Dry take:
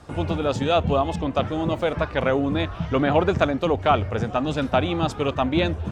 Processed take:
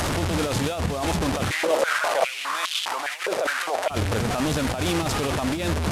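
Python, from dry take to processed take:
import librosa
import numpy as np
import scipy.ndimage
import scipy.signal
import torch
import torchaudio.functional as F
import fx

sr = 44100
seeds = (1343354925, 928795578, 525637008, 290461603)

y = fx.delta_mod(x, sr, bps=64000, step_db=-20.5)
y = fx.over_compress(y, sr, threshold_db=-24.0, ratio=-1.0)
y = np.sign(y) * np.maximum(np.abs(y) - 10.0 ** (-50.0 / 20.0), 0.0)
y = fx.filter_held_highpass(y, sr, hz=4.9, low_hz=510.0, high_hz=3300.0, at=(1.5, 3.89), fade=0.02)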